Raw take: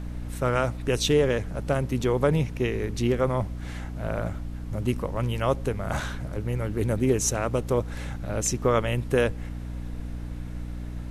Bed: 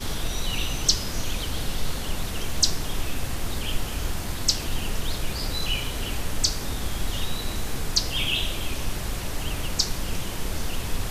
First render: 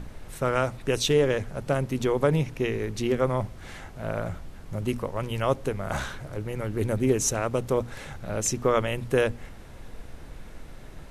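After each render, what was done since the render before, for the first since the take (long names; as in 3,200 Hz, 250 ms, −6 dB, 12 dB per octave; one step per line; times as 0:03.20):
mains-hum notches 60/120/180/240/300 Hz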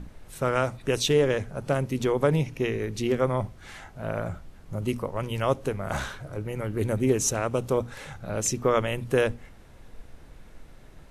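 noise reduction from a noise print 6 dB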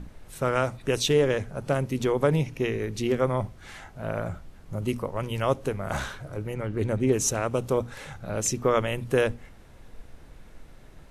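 0:06.54–0:07.13: high-frequency loss of the air 57 metres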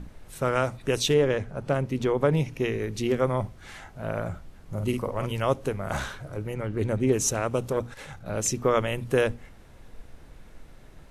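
0:01.14–0:02.37: high-shelf EQ 6,000 Hz −10 dB
0:04.73–0:05.32: double-tracking delay 49 ms −5.5 dB
0:07.69–0:08.26: saturating transformer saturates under 470 Hz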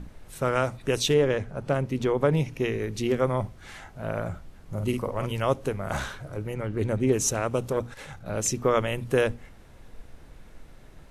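no processing that can be heard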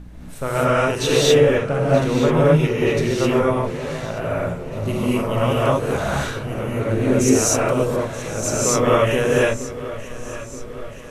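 delay that swaps between a low-pass and a high-pass 464 ms, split 1,200 Hz, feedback 76%, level −12.5 dB
reverb whose tail is shaped and stops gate 280 ms rising, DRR −8 dB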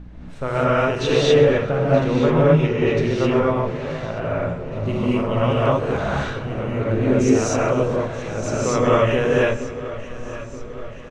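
high-frequency loss of the air 140 metres
repeating echo 130 ms, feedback 58%, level −17.5 dB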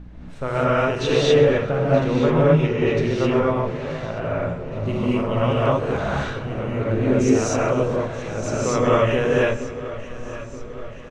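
level −1 dB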